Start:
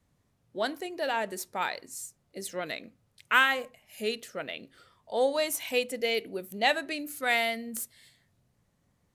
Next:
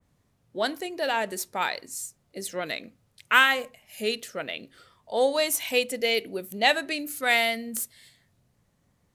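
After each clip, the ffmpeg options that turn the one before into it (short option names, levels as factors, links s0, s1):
-af "adynamicequalizer=threshold=0.0141:dfrequency=2200:dqfactor=0.7:tfrequency=2200:tqfactor=0.7:attack=5:release=100:ratio=0.375:range=1.5:mode=boostabove:tftype=highshelf,volume=1.41"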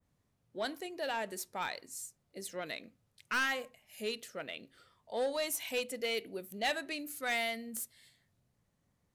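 -af "asoftclip=type=tanh:threshold=0.133,volume=0.376"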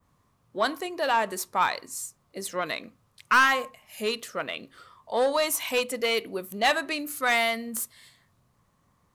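-af "equalizer=f=1100:w=2.8:g=12.5,volume=2.66"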